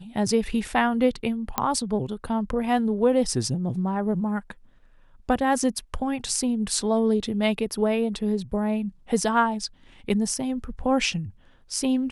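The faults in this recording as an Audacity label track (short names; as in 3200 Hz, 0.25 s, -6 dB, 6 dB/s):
1.580000	1.580000	pop -7 dBFS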